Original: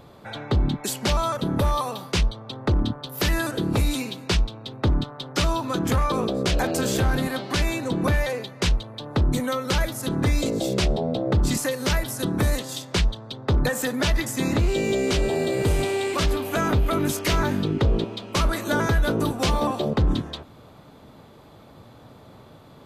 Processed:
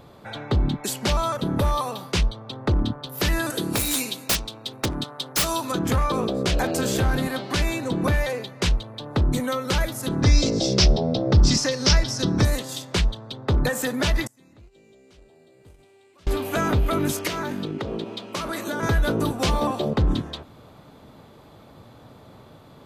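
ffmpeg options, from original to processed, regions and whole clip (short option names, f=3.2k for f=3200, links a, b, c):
-filter_complex "[0:a]asettb=1/sr,asplit=3[a][b][c];[a]atrim=end=3.504[d];[b]atrim=start=3.5:end=5.72,asetpts=PTS-STARTPTS,afade=t=in:d=0.004:c=qsin,afade=t=out:st=2.216:d=0.004:c=qsin,highpass=f=210:p=1,equalizer=f=11k:w=0.41:g=13.5,aeval=exprs='(mod(4.73*val(0)+1,2)-1)/4.73':c=same[e];[c]atrim=start=5.716[f];[d][e]acrossfade=d=0.004:c1=hsin:c2=qsin[g];[g][f]acrossfade=d=0.004:c1=qsin:c2=hsin,asettb=1/sr,asplit=3[h][i][j];[h]atrim=end=10.224[k];[i]atrim=start=10.22:end=12.45,asetpts=PTS-STARTPTS,afade=t=in:d=0.004:c=qsin,afade=t=out:st=2.226:d=0.004:c=qsin,lowpass=f=5.4k:t=q:w=5.6,lowshelf=f=170:g=6.5[l];[j]atrim=start=12.446[m];[k][l]acrossfade=d=0.004:c1=hsin:c2=qsin[n];[n][m]acrossfade=d=0.004:c1=qsin:c2=hsin,asettb=1/sr,asplit=3[o][p][q];[o]atrim=end=14.274[r];[p]atrim=start=14.27:end=16.27,asetpts=PTS-STARTPTS,afade=t=in:d=0.004:c=qsin,afade=t=out:st=1.996:d=0.004:c=qsin,agate=range=-31dB:threshold=-17dB:ratio=16:release=100:detection=peak,acompressor=threshold=-45dB:ratio=8:attack=3.2:release=140:knee=1:detection=peak[s];[q]atrim=start=16.266[t];[r][s]acrossfade=d=0.004:c1=hsin:c2=qsin[u];[u][t]acrossfade=d=0.004:c1=qsin:c2=hsin,asettb=1/sr,asplit=3[v][w][x];[v]atrim=end=17.274[y];[w]atrim=start=17.27:end=18.83,asetpts=PTS-STARTPTS,afade=t=in:d=0.004:c=qsin,afade=t=out:st=1.556:d=0.004:c=qsin,highpass=160,acompressor=threshold=-24dB:ratio=6:attack=3.2:release=140:knee=1:detection=peak[z];[x]atrim=start=18.826[aa];[y][z]acrossfade=d=0.004:c1=hsin:c2=qsin[ab];[ab][aa]acrossfade=d=0.004:c1=qsin:c2=hsin"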